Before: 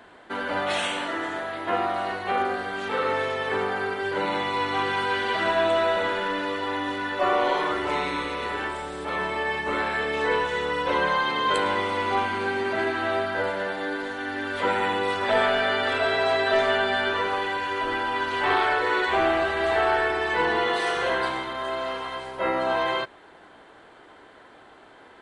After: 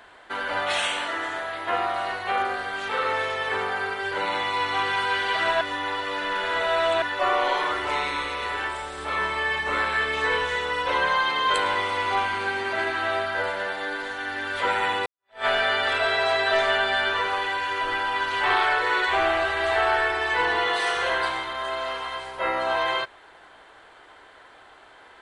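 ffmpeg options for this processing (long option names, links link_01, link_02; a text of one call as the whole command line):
ffmpeg -i in.wav -filter_complex "[0:a]asettb=1/sr,asplit=3[link_01][link_02][link_03];[link_01]atrim=end=8.954[link_04];[link_02]atrim=start=8.95:end=10.56,asetpts=PTS-STARTPTS,afade=type=in:duration=0.004:curve=qsin,afade=type=out:start_time=1.606:duration=0.004:curve=qsin,asplit=2[link_05][link_06];[link_06]adelay=28,volume=-6.5dB[link_07];[link_05][link_07]amix=inputs=2:normalize=0,atrim=end_sample=71001[link_08];[link_03]atrim=start=10.556[link_09];[link_04][link_08]acrossfade=duration=0.004:curve1=hsin:curve2=qsin[link_10];[link_10][link_09]acrossfade=duration=0.004:curve1=qsin:curve2=hsin,asplit=4[link_11][link_12][link_13][link_14];[link_11]atrim=end=5.612[link_15];[link_12]atrim=start=5.608:end=7.022,asetpts=PTS-STARTPTS,areverse[link_16];[link_13]atrim=start=7.018:end=15.06,asetpts=PTS-STARTPTS,afade=type=out:start_time=8.038:duration=0.004:curve=hsin[link_17];[link_14]atrim=start=15.06,asetpts=PTS-STARTPTS,afade=type=in:duration=0.4:curve=exp[link_18];[link_15][link_16]acrossfade=duration=0.004:curve1=hsin:curve2=hsin[link_19];[link_17][link_18]concat=n=2:v=0:a=1[link_20];[link_19][link_20]acrossfade=duration=0.004:curve1=hsin:curve2=hsin,equalizer=frequency=220:width=0.56:gain=-12,volume=3dB" out.wav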